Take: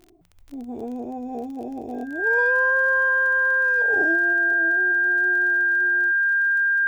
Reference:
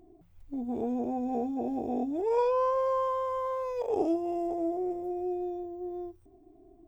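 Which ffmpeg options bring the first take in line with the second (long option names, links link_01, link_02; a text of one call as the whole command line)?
ffmpeg -i in.wav -af "adeclick=threshold=4,bandreject=frequency=1600:width=30,asetnsamples=nb_out_samples=441:pad=0,asendcmd='4.33 volume volume 3dB',volume=0dB" out.wav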